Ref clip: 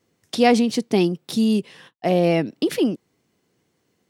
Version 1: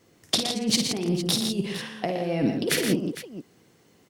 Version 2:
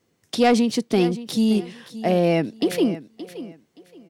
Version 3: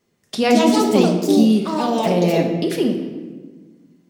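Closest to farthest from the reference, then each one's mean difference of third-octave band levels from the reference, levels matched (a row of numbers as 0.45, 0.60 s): 2, 3, 1; 2.0, 8.0, 11.0 dB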